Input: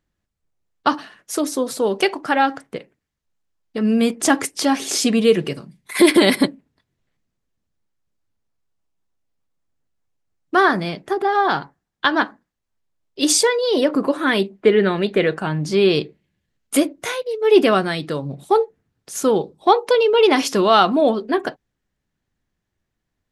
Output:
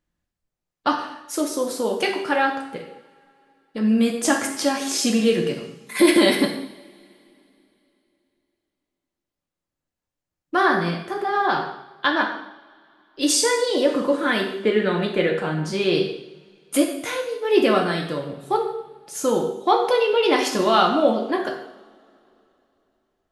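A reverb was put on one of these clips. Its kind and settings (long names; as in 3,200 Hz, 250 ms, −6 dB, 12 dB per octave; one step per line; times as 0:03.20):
coupled-rooms reverb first 0.73 s, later 3.2 s, from −25 dB, DRR 0.5 dB
level −5 dB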